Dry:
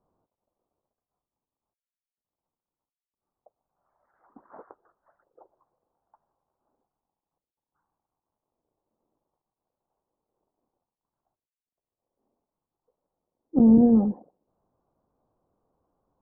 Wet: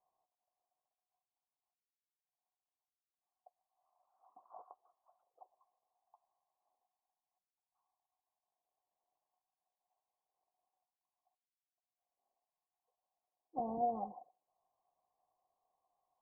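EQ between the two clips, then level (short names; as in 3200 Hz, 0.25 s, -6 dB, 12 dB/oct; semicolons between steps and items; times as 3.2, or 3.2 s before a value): bell 240 Hz -6.5 dB 0.35 oct; dynamic EQ 910 Hz, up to +3 dB, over -42 dBFS, Q 0.81; vocal tract filter a; +2.0 dB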